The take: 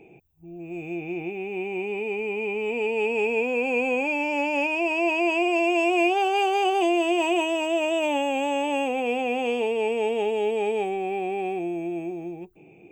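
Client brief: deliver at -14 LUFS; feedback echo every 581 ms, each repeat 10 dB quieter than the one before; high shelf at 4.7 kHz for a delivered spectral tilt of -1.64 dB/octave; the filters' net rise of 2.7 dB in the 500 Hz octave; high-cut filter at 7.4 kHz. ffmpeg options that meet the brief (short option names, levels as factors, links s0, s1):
-af "lowpass=7400,equalizer=f=500:t=o:g=3.5,highshelf=f=4700:g=7.5,aecho=1:1:581|1162|1743|2324:0.316|0.101|0.0324|0.0104,volume=2.51"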